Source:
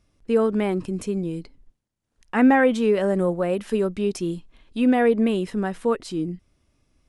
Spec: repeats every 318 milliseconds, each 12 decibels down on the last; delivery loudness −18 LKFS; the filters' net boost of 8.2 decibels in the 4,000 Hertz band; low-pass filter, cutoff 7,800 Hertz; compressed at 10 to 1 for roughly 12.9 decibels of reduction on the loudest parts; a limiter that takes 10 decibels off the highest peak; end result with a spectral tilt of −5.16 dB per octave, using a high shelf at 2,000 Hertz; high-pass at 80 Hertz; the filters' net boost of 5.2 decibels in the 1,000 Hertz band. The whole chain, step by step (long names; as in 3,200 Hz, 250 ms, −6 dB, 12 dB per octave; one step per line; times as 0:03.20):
high-pass filter 80 Hz
low-pass filter 7,800 Hz
parametric band 1,000 Hz +5.5 dB
high-shelf EQ 2,000 Hz +7.5 dB
parametric band 4,000 Hz +3.5 dB
downward compressor 10 to 1, threshold −24 dBFS
brickwall limiter −21.5 dBFS
repeating echo 318 ms, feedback 25%, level −12 dB
level +12.5 dB